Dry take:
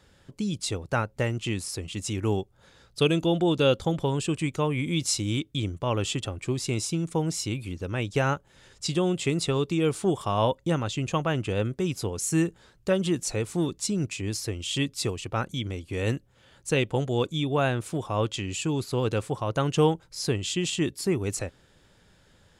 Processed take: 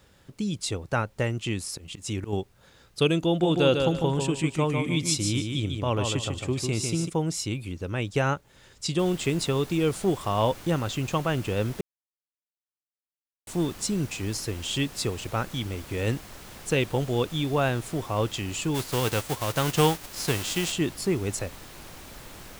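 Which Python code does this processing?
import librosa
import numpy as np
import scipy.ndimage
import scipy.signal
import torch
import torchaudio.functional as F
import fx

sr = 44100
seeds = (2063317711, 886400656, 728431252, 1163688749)

y = fx.auto_swell(x, sr, attack_ms=142.0, at=(1.67, 2.33))
y = fx.echo_feedback(y, sr, ms=149, feedback_pct=26, wet_db=-5.0, at=(3.42, 7.08), fade=0.02)
y = fx.noise_floor_step(y, sr, seeds[0], at_s=8.99, before_db=-66, after_db=-44, tilt_db=3.0)
y = fx.envelope_flatten(y, sr, power=0.6, at=(18.74, 20.71), fade=0.02)
y = fx.edit(y, sr, fx.silence(start_s=11.81, length_s=1.66), tone=tone)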